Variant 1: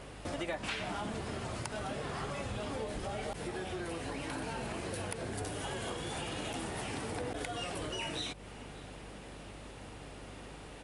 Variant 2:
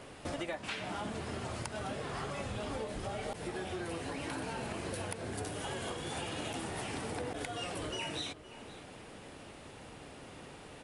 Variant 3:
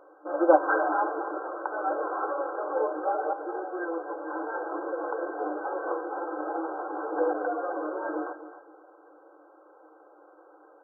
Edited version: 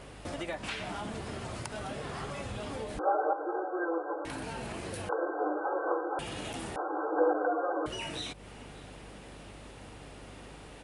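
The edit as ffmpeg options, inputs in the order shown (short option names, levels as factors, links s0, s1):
-filter_complex "[2:a]asplit=3[s0][s1][s2];[0:a]asplit=4[s3][s4][s5][s6];[s3]atrim=end=2.992[s7];[s0]atrim=start=2.988:end=4.252[s8];[s4]atrim=start=4.248:end=5.092[s9];[s1]atrim=start=5.088:end=6.192[s10];[s5]atrim=start=6.188:end=6.762[s11];[s2]atrim=start=6.758:end=7.862[s12];[s6]atrim=start=7.858[s13];[s7][s8]acrossfade=d=0.004:c1=hsin:c2=hsin[s14];[s14][s9]acrossfade=d=0.004:c1=hsin:c2=hsin[s15];[s15][s10]acrossfade=d=0.004:c1=hsin:c2=hsin[s16];[s16][s11]acrossfade=d=0.004:c1=hsin:c2=hsin[s17];[s17][s12]acrossfade=d=0.004:c1=hsin:c2=hsin[s18];[s18][s13]acrossfade=d=0.004:c1=hsin:c2=hsin"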